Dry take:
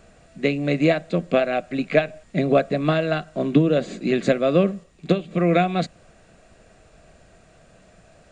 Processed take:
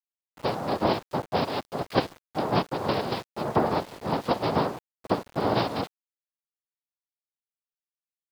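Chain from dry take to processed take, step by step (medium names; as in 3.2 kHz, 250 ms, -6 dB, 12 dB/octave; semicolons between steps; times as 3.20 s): noise-vocoded speech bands 2; resampled via 11.025 kHz; small samples zeroed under -35 dBFS; trim -6.5 dB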